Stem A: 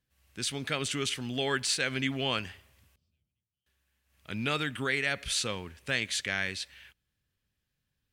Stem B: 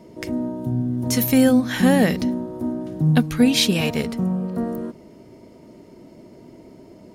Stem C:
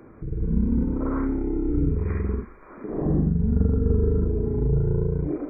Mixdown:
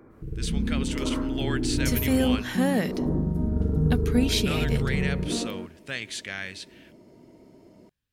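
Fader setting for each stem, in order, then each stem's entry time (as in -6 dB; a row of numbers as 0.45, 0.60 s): -3.0, -7.5, -4.5 dB; 0.00, 0.75, 0.00 s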